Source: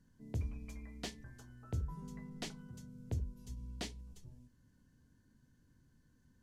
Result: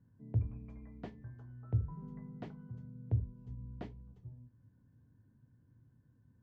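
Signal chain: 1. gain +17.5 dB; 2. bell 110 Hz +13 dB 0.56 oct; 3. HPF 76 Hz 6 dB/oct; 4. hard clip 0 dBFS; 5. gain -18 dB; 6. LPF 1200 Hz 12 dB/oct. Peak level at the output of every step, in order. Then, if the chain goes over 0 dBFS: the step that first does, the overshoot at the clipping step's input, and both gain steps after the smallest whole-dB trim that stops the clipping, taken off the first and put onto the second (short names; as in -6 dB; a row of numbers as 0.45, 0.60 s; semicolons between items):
-9.0, -1.5, -3.0, -3.0, -21.0, -21.0 dBFS; no overload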